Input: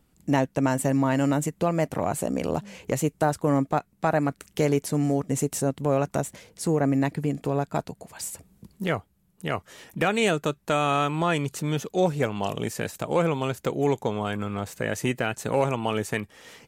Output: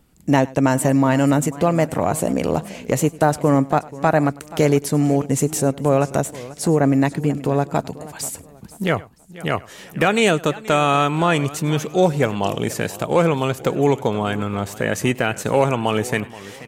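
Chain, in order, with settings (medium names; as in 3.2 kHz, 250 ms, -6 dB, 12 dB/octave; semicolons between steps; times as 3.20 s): on a send: delay 100 ms -22 dB; on the sum: modulated delay 484 ms, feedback 32%, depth 167 cents, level -18 dB; trim +6.5 dB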